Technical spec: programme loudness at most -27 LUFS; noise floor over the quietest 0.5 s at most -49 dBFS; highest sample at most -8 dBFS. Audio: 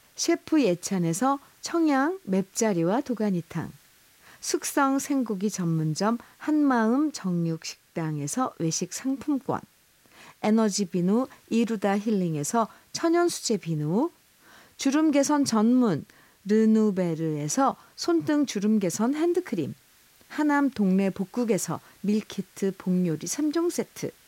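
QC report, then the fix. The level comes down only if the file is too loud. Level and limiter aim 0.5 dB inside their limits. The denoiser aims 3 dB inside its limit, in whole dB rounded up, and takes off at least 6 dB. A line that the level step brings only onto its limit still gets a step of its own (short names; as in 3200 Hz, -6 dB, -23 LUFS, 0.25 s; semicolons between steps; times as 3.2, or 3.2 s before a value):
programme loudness -26.0 LUFS: fail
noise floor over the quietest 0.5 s -60 dBFS: OK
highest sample -11.0 dBFS: OK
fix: gain -1.5 dB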